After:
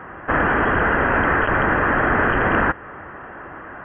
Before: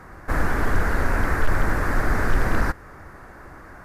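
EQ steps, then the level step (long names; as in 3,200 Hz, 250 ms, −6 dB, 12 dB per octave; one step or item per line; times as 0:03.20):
high-pass filter 260 Hz 6 dB per octave
linear-phase brick-wall low-pass 3,300 Hz
notch filter 2,200 Hz, Q 11
+9.0 dB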